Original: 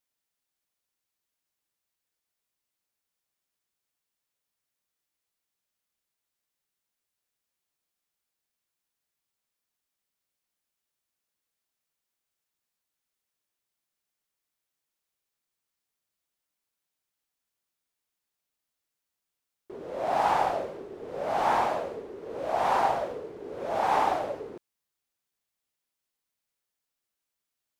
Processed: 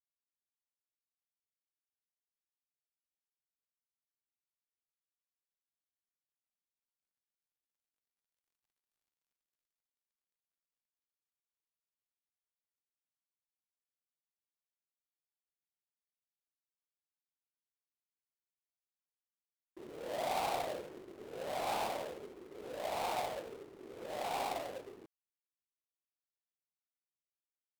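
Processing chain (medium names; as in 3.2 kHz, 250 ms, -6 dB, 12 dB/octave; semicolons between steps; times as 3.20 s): dead-time distortion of 0.18 ms; Doppler pass-by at 8.69 s, 29 m/s, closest 18 m; waveshaping leveller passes 1; trim +12 dB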